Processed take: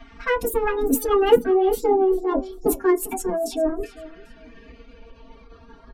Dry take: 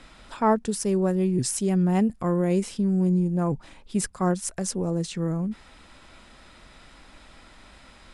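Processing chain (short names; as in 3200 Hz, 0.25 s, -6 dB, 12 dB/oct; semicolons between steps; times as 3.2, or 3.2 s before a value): speed glide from 158% -> 116%; spectral gate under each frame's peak -30 dB strong; low-pass opened by the level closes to 2400 Hz, open at -21.5 dBFS; reverb removal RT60 0.93 s; low shelf 410 Hz +4.5 dB; comb 6.3 ms, depth 99%; in parallel at -6 dB: soft clip -19.5 dBFS, distortion -10 dB; on the sum: dynamic EQ 1400 Hz, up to -6 dB, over -41 dBFS, Q 2.4; LFO notch saw up 0.33 Hz 330–2800 Hz; formant-preserving pitch shift +6.5 st; feedback echo 0.397 s, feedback 26%, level -18 dB; on a send at -2 dB: reverb RT60 0.15 s, pre-delay 3 ms; on the sum: gain -2.5 dB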